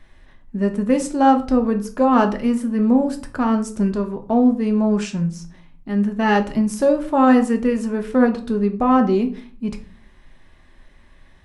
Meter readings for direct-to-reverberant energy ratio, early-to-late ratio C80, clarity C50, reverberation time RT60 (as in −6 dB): 5.0 dB, 18.0 dB, 13.0 dB, 0.40 s